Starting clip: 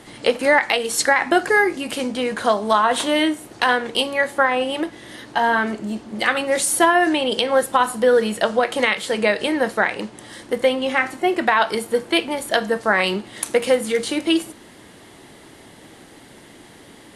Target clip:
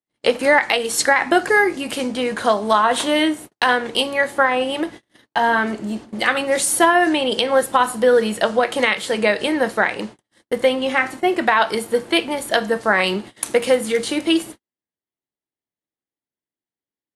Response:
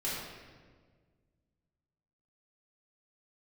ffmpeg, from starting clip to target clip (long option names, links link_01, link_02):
-af "agate=range=-53dB:threshold=-34dB:ratio=16:detection=peak,volume=1dB"